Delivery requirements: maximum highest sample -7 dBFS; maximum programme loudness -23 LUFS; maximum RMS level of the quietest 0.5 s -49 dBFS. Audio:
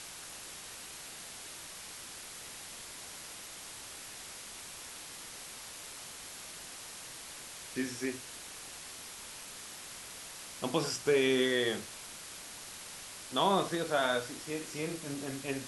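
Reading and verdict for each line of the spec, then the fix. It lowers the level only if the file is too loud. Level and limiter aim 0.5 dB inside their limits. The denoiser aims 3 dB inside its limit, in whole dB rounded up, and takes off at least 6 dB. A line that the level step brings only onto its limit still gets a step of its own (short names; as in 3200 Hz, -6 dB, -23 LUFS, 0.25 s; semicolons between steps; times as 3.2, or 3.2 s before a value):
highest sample -15.5 dBFS: OK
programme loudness -37.0 LUFS: OK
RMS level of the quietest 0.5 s -47 dBFS: fail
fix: denoiser 6 dB, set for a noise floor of -47 dBFS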